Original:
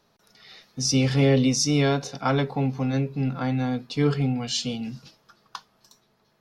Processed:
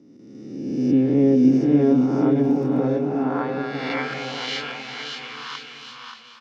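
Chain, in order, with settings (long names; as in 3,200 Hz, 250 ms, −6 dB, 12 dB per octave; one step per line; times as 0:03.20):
peak hold with a rise ahead of every peak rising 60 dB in 1.57 s
dynamic equaliser 7,800 Hz, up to −6 dB, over −36 dBFS, Q 0.85
band-pass filter sweep 300 Hz → 2,000 Hz, 0:02.54–0:03.91
bouncing-ball delay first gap 580 ms, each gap 0.75×, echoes 5
0:02.38–0:02.80: surface crackle 78 per second −49 dBFS
every ending faded ahead of time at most 150 dB per second
level +6.5 dB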